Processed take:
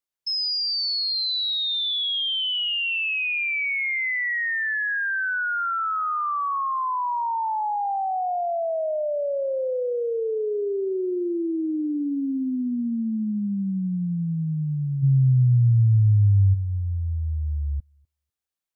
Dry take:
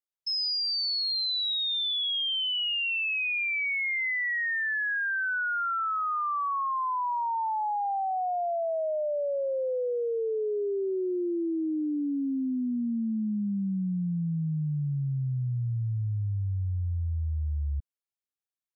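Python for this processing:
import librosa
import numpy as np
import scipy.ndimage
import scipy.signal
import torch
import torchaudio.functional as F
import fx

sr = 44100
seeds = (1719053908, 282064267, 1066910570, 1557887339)

p1 = fx.low_shelf(x, sr, hz=270.0, db=10.5, at=(15.02, 16.53), fade=0.02)
p2 = p1 + fx.echo_thinned(p1, sr, ms=248, feedback_pct=33, hz=470.0, wet_db=-16.0, dry=0)
y = p2 * librosa.db_to_amplitude(3.5)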